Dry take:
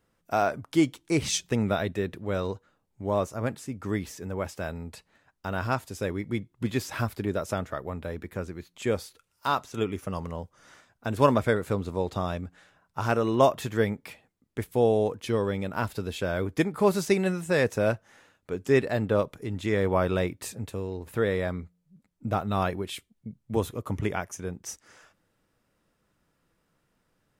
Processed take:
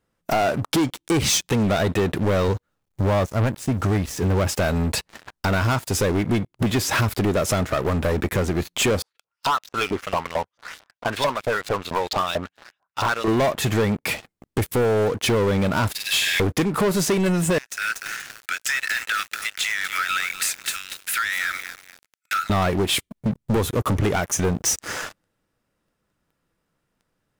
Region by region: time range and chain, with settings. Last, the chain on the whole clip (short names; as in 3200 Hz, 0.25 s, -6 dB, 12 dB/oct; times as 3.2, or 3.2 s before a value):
2.48–4.47 low shelf 140 Hz +9.5 dB + requantised 12-bit, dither none + upward expander, over -34 dBFS
9.02–13.28 low shelf 110 Hz +12 dB + LFO band-pass saw up 4.5 Hz 620–4800 Hz
15.92–16.4 brick-wall FIR high-pass 1600 Hz + flutter echo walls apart 8.5 m, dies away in 0.58 s
17.58–22.5 Chebyshev high-pass 1300 Hz, order 8 + compressor 16:1, threshold -43 dBFS + lo-fi delay 0.24 s, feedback 55%, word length 9-bit, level -9 dB
whole clip: compressor 4:1, threshold -40 dBFS; sample leveller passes 5; gain +7.5 dB